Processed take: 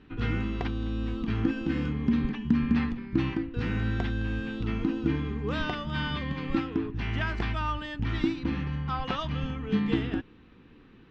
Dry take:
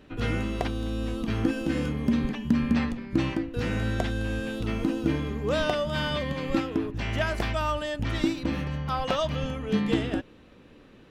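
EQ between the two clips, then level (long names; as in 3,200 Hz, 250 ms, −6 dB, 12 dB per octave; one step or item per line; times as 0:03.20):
high-frequency loss of the air 190 metres
parametric band 590 Hz −14.5 dB 0.49 octaves
0.0 dB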